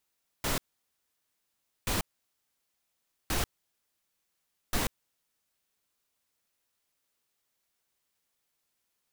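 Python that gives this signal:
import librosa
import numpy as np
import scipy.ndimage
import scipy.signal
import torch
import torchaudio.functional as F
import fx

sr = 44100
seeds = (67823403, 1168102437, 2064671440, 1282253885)

y = fx.noise_burst(sr, seeds[0], colour='pink', on_s=0.14, off_s=1.29, bursts=4, level_db=-29.0)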